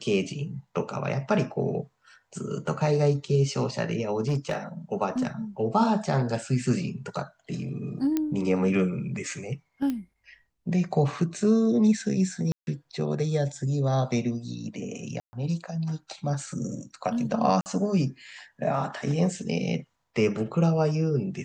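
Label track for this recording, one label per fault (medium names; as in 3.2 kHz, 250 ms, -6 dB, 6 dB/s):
4.210000	4.570000	clipped -21.5 dBFS
8.170000	8.170000	pop -13 dBFS
9.900000	9.900000	pop -18 dBFS
12.520000	12.670000	dropout 151 ms
15.200000	15.330000	dropout 130 ms
17.610000	17.660000	dropout 49 ms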